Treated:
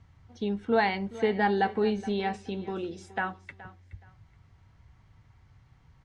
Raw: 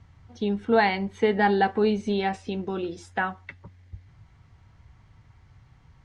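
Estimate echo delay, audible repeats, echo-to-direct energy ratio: 422 ms, 2, −17.5 dB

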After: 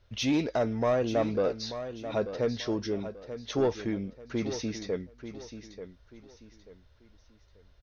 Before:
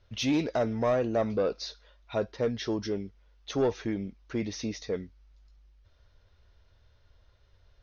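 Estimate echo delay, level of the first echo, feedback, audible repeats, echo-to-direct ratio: 887 ms, −11.0 dB, 32%, 3, −10.5 dB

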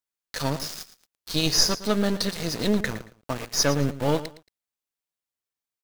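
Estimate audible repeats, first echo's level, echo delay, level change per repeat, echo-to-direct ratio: 2, −14.5 dB, 113 ms, −13.0 dB, −14.5 dB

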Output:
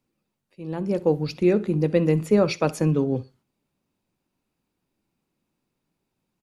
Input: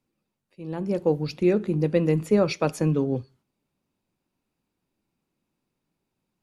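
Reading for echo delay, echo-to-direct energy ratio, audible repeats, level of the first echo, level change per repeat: 63 ms, −22.5 dB, 2, −22.5 dB, −12.5 dB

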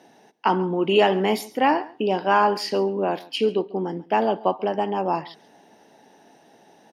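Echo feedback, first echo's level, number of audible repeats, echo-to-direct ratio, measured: repeats not evenly spaced, −21.0 dB, 1, −21.0 dB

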